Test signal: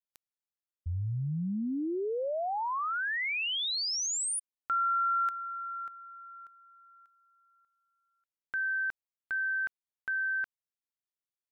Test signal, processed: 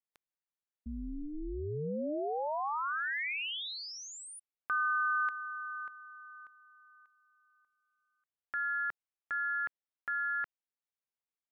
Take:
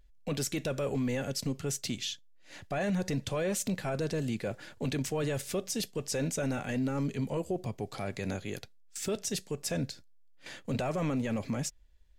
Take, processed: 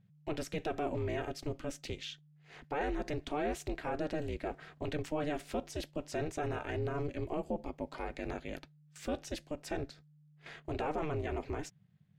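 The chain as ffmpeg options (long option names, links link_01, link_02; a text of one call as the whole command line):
ffmpeg -i in.wav -af "bass=frequency=250:gain=-5,treble=frequency=4000:gain=-14,aeval=exprs='val(0)*sin(2*PI*150*n/s)':channel_layout=same,volume=1dB" out.wav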